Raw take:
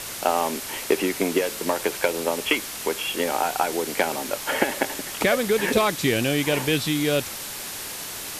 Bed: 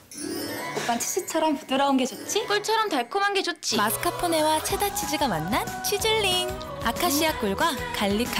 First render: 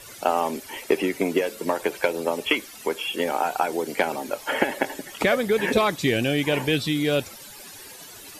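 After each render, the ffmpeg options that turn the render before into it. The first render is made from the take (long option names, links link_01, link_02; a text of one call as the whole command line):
ffmpeg -i in.wav -af "afftdn=noise_reduction=14:noise_floor=-34" out.wav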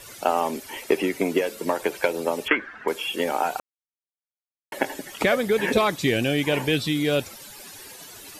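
ffmpeg -i in.wav -filter_complex "[0:a]asettb=1/sr,asplit=3[link_01][link_02][link_03];[link_01]atrim=end=2.484[link_04];[link_02]atrim=start=2.48:end=2.88,asetpts=PTS-STARTPTS,afade=type=in:duration=0.004:curve=qsin,afade=type=out:start_time=0.396:duration=0.004:curve=qsin,lowpass=frequency=1600:width_type=q:width=8.3[link_05];[link_03]atrim=start=2.876[link_06];[link_04][link_05]acrossfade=duration=0.004:curve1=hsin:curve2=qsin[link_07];[link_07][link_06]acrossfade=duration=0.004:curve1=qsin:curve2=hsin,asplit=3[link_08][link_09][link_10];[link_08]atrim=end=3.6,asetpts=PTS-STARTPTS,afade=type=out:start_time=3.596:duration=0.004:curve=hsin[link_11];[link_09]atrim=start=3.6:end=4.72,asetpts=PTS-STARTPTS,volume=0[link_12];[link_10]atrim=start=4.72,asetpts=PTS-STARTPTS,afade=type=in:duration=0.004:curve=hsin[link_13];[link_11][link_12][link_13]concat=n=3:v=0:a=1" out.wav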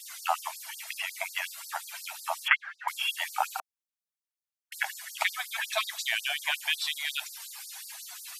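ffmpeg -i in.wav -af "afftfilt=real='re*gte(b*sr/1024,600*pow(4300/600,0.5+0.5*sin(2*PI*5.5*pts/sr)))':imag='im*gte(b*sr/1024,600*pow(4300/600,0.5+0.5*sin(2*PI*5.5*pts/sr)))':win_size=1024:overlap=0.75" out.wav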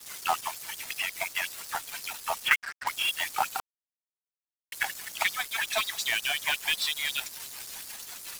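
ffmpeg -i in.wav -filter_complex "[0:a]asplit=2[link_01][link_02];[link_02]aeval=exprs='(mod(14.1*val(0)+1,2)-1)/14.1':channel_layout=same,volume=-7.5dB[link_03];[link_01][link_03]amix=inputs=2:normalize=0,acrusher=bits=5:mix=0:aa=0.5" out.wav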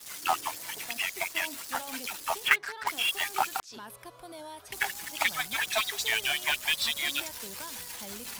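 ffmpeg -i in.wav -i bed.wav -filter_complex "[1:a]volume=-21.5dB[link_01];[0:a][link_01]amix=inputs=2:normalize=0" out.wav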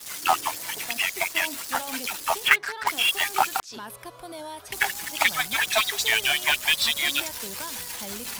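ffmpeg -i in.wav -af "volume=6dB,alimiter=limit=-2dB:level=0:latency=1" out.wav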